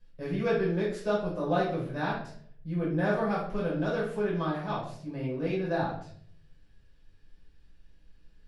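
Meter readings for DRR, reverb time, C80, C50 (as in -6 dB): -8.5 dB, 0.60 s, 8.0 dB, 3.5 dB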